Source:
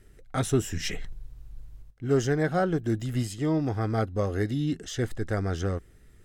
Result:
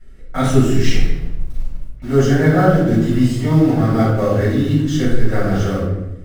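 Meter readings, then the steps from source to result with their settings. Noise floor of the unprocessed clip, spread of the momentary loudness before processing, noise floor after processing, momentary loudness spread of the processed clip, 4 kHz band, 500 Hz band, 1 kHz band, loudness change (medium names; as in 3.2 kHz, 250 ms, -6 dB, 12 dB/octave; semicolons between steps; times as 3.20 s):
-55 dBFS, 9 LU, -33 dBFS, 16 LU, +9.0 dB, +10.5 dB, +11.0 dB, +12.0 dB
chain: treble shelf 8.3 kHz -10 dB; in parallel at -10 dB: bit crusher 6-bit; on the sum: simulated room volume 320 m³, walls mixed, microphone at 6.8 m; trim -6.5 dB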